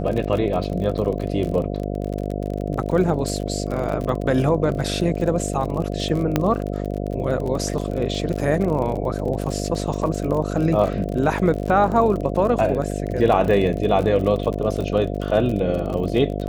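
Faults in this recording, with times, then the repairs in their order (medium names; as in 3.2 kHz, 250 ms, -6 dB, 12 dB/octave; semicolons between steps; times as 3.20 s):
buzz 50 Hz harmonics 14 -26 dBFS
crackle 40 per s -26 dBFS
6.36 s: pop -5 dBFS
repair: de-click; de-hum 50 Hz, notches 14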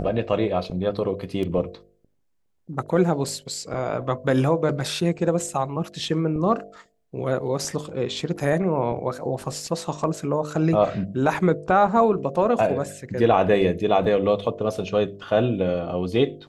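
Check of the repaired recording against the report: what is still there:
nothing left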